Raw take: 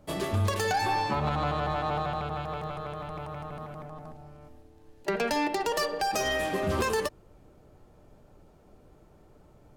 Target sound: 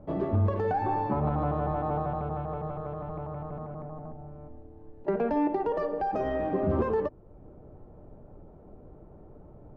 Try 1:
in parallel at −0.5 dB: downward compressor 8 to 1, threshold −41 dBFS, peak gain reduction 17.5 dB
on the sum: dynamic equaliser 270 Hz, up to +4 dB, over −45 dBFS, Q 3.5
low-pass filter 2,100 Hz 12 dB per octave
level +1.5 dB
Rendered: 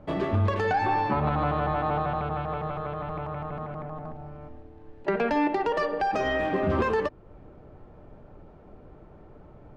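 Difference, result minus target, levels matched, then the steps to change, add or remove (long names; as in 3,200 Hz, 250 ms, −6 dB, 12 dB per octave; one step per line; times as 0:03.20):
2,000 Hz band +10.0 dB; downward compressor: peak gain reduction −8 dB
change: downward compressor 8 to 1, threshold −50 dBFS, peak gain reduction 25.5 dB
change: low-pass filter 820 Hz 12 dB per octave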